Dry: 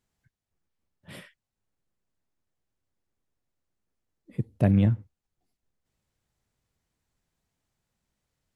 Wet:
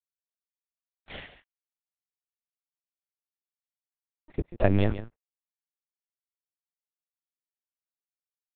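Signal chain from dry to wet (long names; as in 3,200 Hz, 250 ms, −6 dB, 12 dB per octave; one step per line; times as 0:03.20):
high-pass filter 310 Hz 12 dB per octave
0:01.19–0:04.64: compressor whose output falls as the input rises −29 dBFS, ratio −0.5
dead-zone distortion −53 dBFS
single-tap delay 144 ms −13 dB
linear-prediction vocoder at 8 kHz pitch kept
level +8.5 dB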